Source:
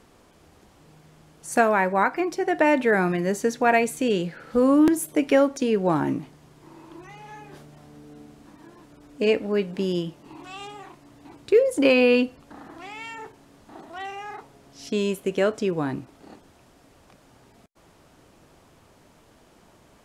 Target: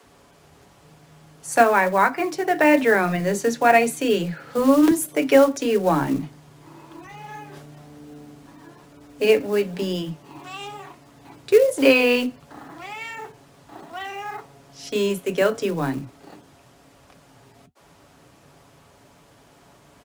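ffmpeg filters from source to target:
-filter_complex "[0:a]highpass=f=45:w=0.5412,highpass=f=45:w=1.3066,aecho=1:1:7.1:0.34,flanger=delay=2.8:depth=5.6:regen=-73:speed=1:shape=triangular,acrossover=split=130|3700[a][b][c];[a]aeval=exprs='clip(val(0),-1,0.00211)':c=same[d];[b]acrusher=bits=6:mode=log:mix=0:aa=0.000001[e];[d][e][c]amix=inputs=3:normalize=0,acrossover=split=300[f][g];[f]adelay=30[h];[h][g]amix=inputs=2:normalize=0,volume=7.5dB"

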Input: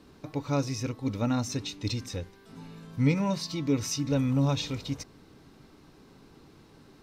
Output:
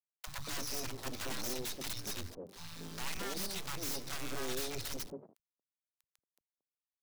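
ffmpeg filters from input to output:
-filter_complex "[0:a]agate=range=-12dB:threshold=-46dB:ratio=16:detection=peak,equalizer=f=5.4k:w=0.92:g=12,bandreject=f=50:t=h:w=6,bandreject=f=100:t=h:w=6,bandreject=f=150:t=h:w=6,acompressor=threshold=-35dB:ratio=4,aeval=exprs='(mod(39.8*val(0)+1,2)-1)/39.8':c=same,acrusher=bits=6:dc=4:mix=0:aa=0.000001,acrossover=split=160|740[a][b][c];[a]adelay=30[d];[b]adelay=230[e];[d][e][c]amix=inputs=3:normalize=0,volume=3.5dB"

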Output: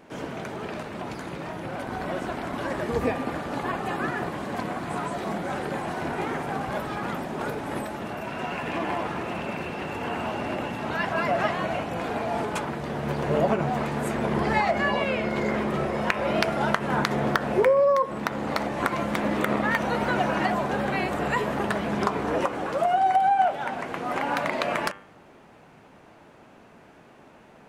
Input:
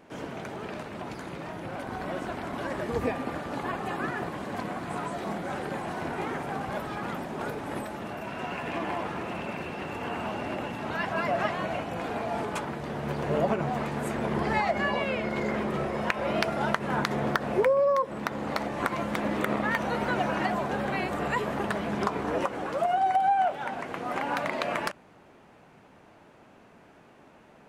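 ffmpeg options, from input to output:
-af "bandreject=f=98.56:t=h:w=4,bandreject=f=197.12:t=h:w=4,bandreject=f=295.68:t=h:w=4,bandreject=f=394.24:t=h:w=4,bandreject=f=492.8:t=h:w=4,bandreject=f=591.36:t=h:w=4,bandreject=f=689.92:t=h:w=4,bandreject=f=788.48:t=h:w=4,bandreject=f=887.04:t=h:w=4,bandreject=f=985.6:t=h:w=4,bandreject=f=1.08416k:t=h:w=4,bandreject=f=1.18272k:t=h:w=4,bandreject=f=1.28128k:t=h:w=4,bandreject=f=1.37984k:t=h:w=4,bandreject=f=1.4784k:t=h:w=4,bandreject=f=1.57696k:t=h:w=4,bandreject=f=1.67552k:t=h:w=4,bandreject=f=1.77408k:t=h:w=4,bandreject=f=1.87264k:t=h:w=4,bandreject=f=1.9712k:t=h:w=4,bandreject=f=2.06976k:t=h:w=4,bandreject=f=2.16832k:t=h:w=4,bandreject=f=2.26688k:t=h:w=4,bandreject=f=2.36544k:t=h:w=4,bandreject=f=2.464k:t=h:w=4,bandreject=f=2.56256k:t=h:w=4,bandreject=f=2.66112k:t=h:w=4,bandreject=f=2.75968k:t=h:w=4,bandreject=f=2.85824k:t=h:w=4,bandreject=f=2.9568k:t=h:w=4,bandreject=f=3.05536k:t=h:w=4,bandreject=f=3.15392k:t=h:w=4,bandreject=f=3.25248k:t=h:w=4,volume=3.5dB"

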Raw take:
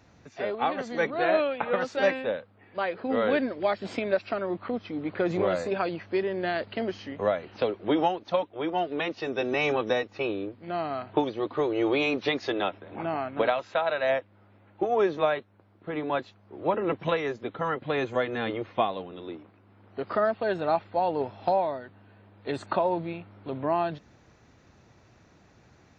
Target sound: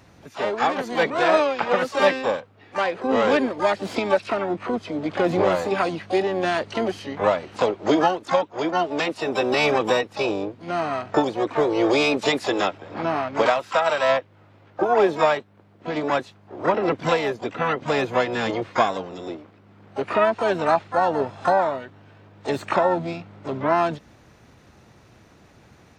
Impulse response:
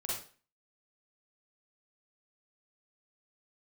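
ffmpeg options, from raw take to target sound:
-filter_complex "[0:a]acontrast=28,asplit=3[a][b][c];[b]asetrate=66075,aresample=44100,atempo=0.66742,volume=-9dB[d];[c]asetrate=88200,aresample=44100,atempo=0.5,volume=-11dB[e];[a][d][e]amix=inputs=3:normalize=0"

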